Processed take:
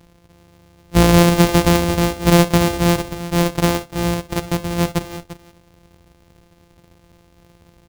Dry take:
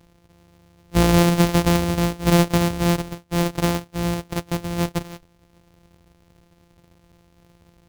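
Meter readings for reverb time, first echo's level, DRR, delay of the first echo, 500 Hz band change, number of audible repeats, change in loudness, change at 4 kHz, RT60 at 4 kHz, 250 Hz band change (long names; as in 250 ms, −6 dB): no reverb audible, −17.5 dB, no reverb audible, 62 ms, +5.0 dB, 2, +4.0 dB, +4.5 dB, no reverb audible, +3.5 dB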